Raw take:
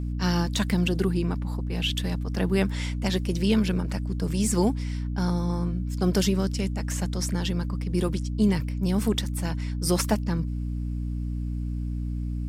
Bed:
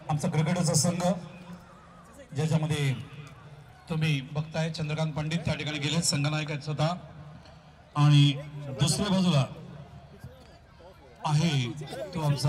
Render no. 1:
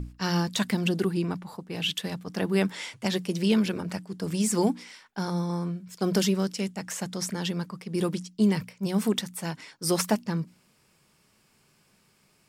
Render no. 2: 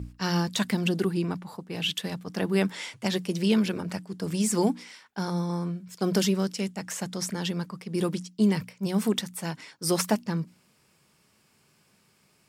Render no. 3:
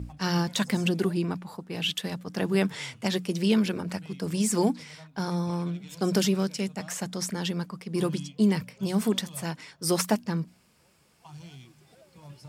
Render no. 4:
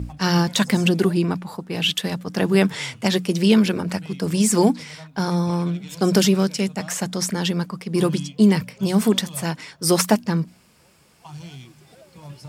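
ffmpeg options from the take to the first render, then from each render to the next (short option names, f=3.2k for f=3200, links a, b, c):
-af "bandreject=f=60:t=h:w=6,bandreject=f=120:t=h:w=6,bandreject=f=180:t=h:w=6,bandreject=f=240:t=h:w=6,bandreject=f=300:t=h:w=6"
-af "highpass=53"
-filter_complex "[1:a]volume=-20.5dB[a];[0:a][a]amix=inputs=2:normalize=0"
-af "volume=7.5dB"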